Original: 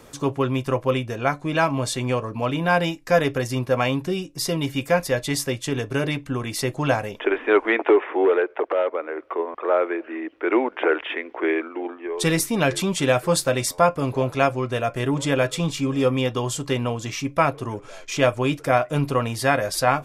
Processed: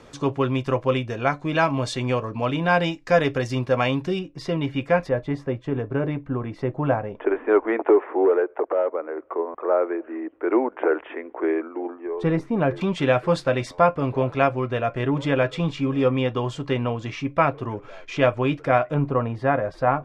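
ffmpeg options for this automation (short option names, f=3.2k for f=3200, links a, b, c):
-af "asetnsamples=n=441:p=0,asendcmd='4.19 lowpass f 2500;5.09 lowpass f 1200;12.81 lowpass f 2800;18.94 lowpass f 1300',lowpass=5.2k"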